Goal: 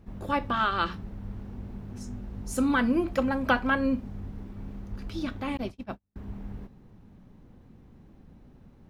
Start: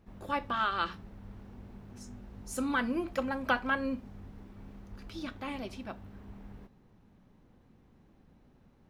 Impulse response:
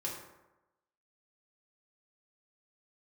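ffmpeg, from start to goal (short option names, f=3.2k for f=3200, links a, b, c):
-filter_complex "[0:a]asettb=1/sr,asplit=3[a][b][c];[a]atrim=end=5.574[d];[b]atrim=start=5.57:end=6.16,asetpts=PTS-STARTPTS,afade=t=in:d=0.004:c=qsin,afade=t=out:st=0.586:d=0.004:c=qsin,agate=range=-44dB:threshold=-40dB:ratio=16:detection=peak[e];[c]atrim=start=6.156[f];[d][e]acrossfade=d=0.004:c1=hsin:c2=qsin[g];[g][f]acrossfade=d=0.004:c1=qsin:c2=hsin,lowshelf=f=360:g=7,volume=3.5dB"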